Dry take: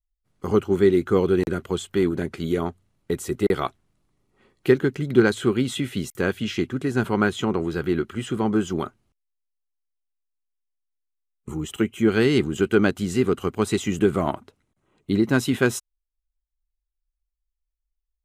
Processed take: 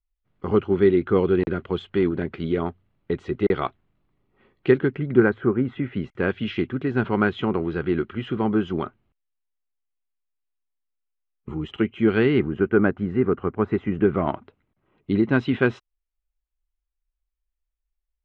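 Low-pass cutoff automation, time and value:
low-pass 24 dB/octave
4.75 s 3.3 kHz
5.53 s 1.6 kHz
6.35 s 3.2 kHz
12.14 s 3.2 kHz
12.63 s 1.9 kHz
13.90 s 1.9 kHz
14.32 s 3.1 kHz

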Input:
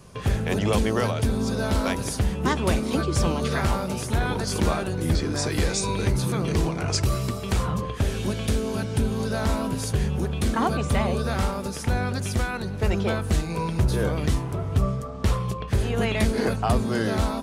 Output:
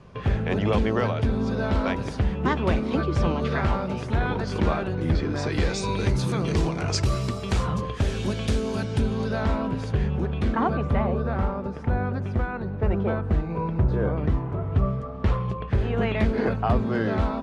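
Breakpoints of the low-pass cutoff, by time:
5.27 s 2.9 kHz
6.21 s 6.7 kHz
8.83 s 6.7 kHz
9.59 s 2.6 kHz
10.39 s 2.6 kHz
11.12 s 1.4 kHz
14.31 s 1.4 kHz
14.93 s 2.4 kHz

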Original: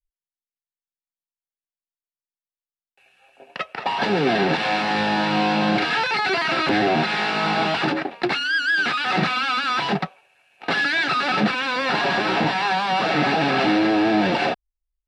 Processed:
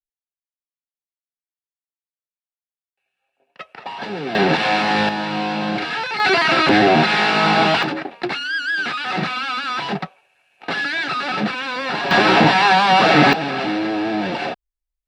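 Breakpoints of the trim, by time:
-19 dB
from 3.59 s -7 dB
from 4.35 s +4 dB
from 5.09 s -2.5 dB
from 6.20 s +6 dB
from 7.83 s -1.5 dB
from 12.11 s +8 dB
from 13.33 s -3 dB

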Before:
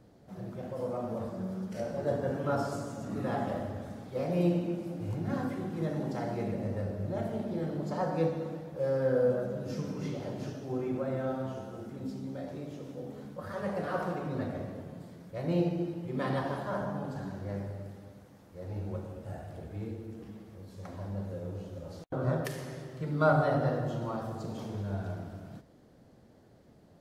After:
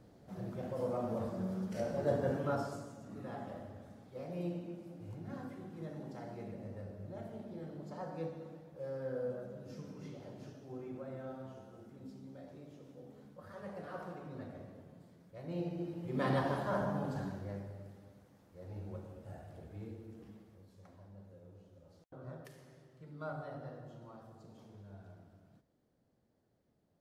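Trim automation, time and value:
2.32 s -1.5 dB
3.01 s -12 dB
15.49 s -12 dB
16.27 s -0.5 dB
17.20 s -0.5 dB
17.63 s -8 dB
20.32 s -8 dB
21.09 s -18 dB

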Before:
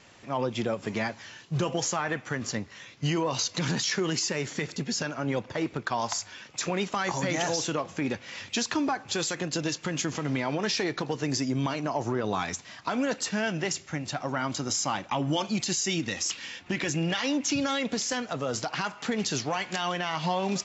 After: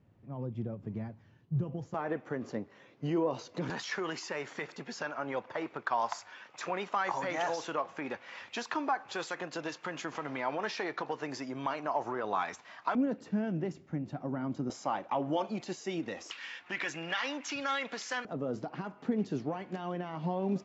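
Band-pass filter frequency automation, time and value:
band-pass filter, Q 0.98
100 Hz
from 1.94 s 420 Hz
from 3.70 s 1 kHz
from 12.95 s 230 Hz
from 14.70 s 590 Hz
from 16.31 s 1.4 kHz
from 18.25 s 270 Hz

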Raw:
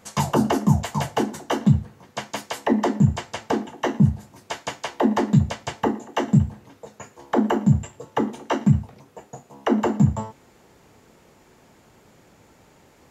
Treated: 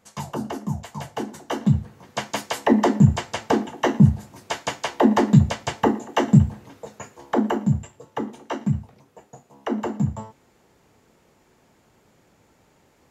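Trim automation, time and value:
0.90 s -9.5 dB
2.19 s +3 dB
6.89 s +3 dB
7.98 s -5.5 dB

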